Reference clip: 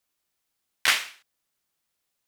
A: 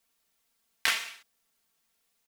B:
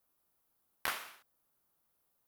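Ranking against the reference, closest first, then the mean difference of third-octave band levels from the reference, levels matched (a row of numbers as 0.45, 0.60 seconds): A, B; 3.5, 7.0 decibels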